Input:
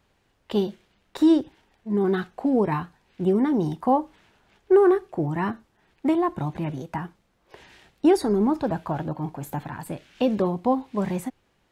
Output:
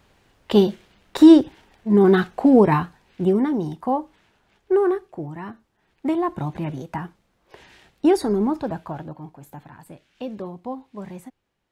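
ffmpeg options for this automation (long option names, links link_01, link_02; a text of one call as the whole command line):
ffmpeg -i in.wav -af "volume=18dB,afade=type=out:start_time=2.56:duration=1.08:silence=0.316228,afade=type=out:start_time=4.81:duration=0.63:silence=0.446684,afade=type=in:start_time=5.44:duration=0.92:silence=0.316228,afade=type=out:start_time=8.3:duration=1.01:silence=0.298538" out.wav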